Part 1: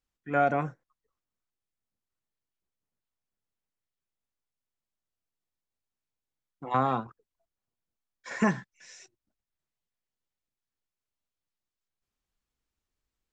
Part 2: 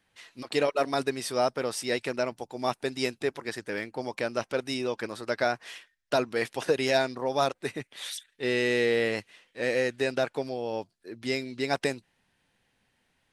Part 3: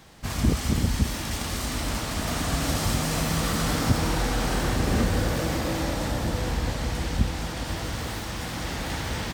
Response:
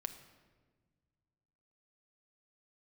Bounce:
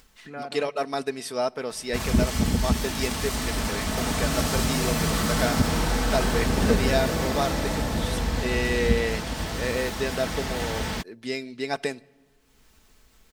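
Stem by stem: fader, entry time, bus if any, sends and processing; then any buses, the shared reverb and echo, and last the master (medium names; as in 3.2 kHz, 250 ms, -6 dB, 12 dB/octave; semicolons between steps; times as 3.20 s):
-4.5 dB, 0.00 s, no send, upward compressor, threshold -28 dBFS; auto duck -20 dB, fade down 1.20 s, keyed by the second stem
-3.0 dB, 0.00 s, send -11.5 dB, none
+0.5 dB, 1.70 s, no send, none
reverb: on, RT60 1.5 s, pre-delay 6 ms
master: comb 4.6 ms, depth 35%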